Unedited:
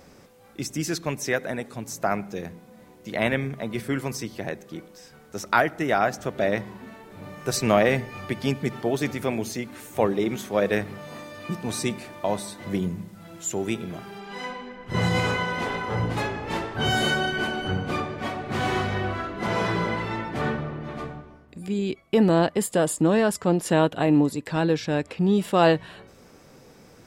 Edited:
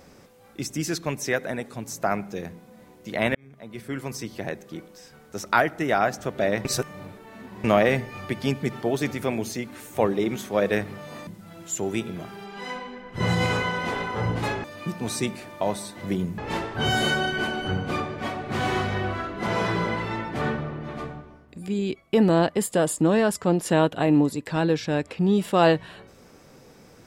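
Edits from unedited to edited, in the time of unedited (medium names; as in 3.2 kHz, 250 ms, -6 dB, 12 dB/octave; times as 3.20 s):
3.35–4.38 s: fade in
6.65–7.64 s: reverse
11.27–13.01 s: move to 16.38 s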